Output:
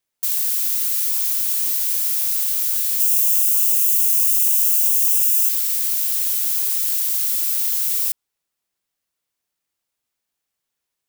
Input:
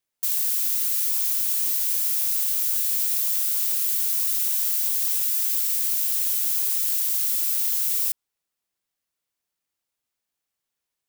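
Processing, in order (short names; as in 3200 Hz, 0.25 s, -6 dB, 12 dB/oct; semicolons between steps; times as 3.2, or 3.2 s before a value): 3–5.49 EQ curve 130 Hz 0 dB, 230 Hz +15 dB, 340 Hz -9 dB, 510 Hz +4 dB, 760 Hz -20 dB, 1200 Hz -23 dB, 1800 Hz -15 dB, 2700 Hz +4 dB, 3900 Hz -8 dB, 6500 Hz +4 dB; gain +3 dB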